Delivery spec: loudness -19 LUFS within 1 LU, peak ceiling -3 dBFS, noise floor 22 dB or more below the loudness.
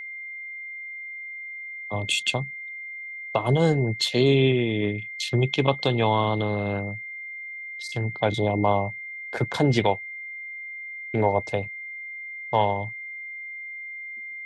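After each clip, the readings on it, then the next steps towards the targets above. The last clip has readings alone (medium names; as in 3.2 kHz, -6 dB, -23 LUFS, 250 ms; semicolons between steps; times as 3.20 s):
steady tone 2.1 kHz; tone level -34 dBFS; loudness -26.5 LUFS; peak level -5.0 dBFS; loudness target -19.0 LUFS
-> band-stop 2.1 kHz, Q 30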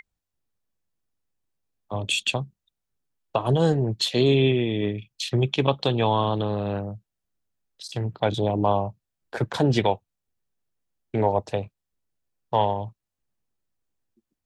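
steady tone not found; loudness -24.5 LUFS; peak level -5.5 dBFS; loudness target -19.0 LUFS
-> trim +5.5 dB; peak limiter -3 dBFS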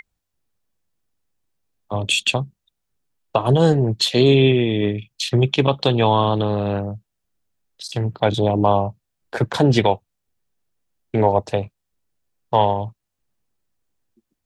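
loudness -19.0 LUFS; peak level -3.0 dBFS; noise floor -78 dBFS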